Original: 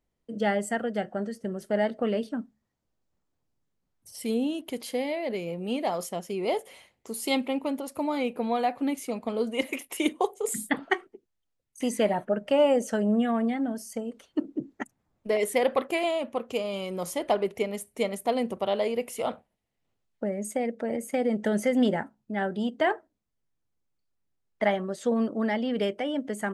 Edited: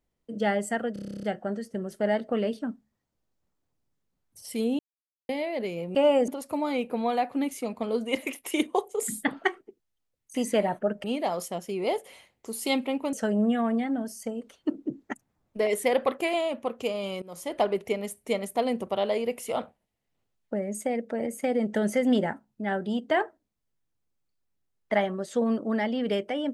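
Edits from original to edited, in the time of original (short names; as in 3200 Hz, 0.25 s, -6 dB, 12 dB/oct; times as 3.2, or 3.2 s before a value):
0.93 stutter 0.03 s, 11 plays
4.49–4.99 mute
5.65–7.74 swap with 12.5–12.83
16.92–17.31 fade in, from -19.5 dB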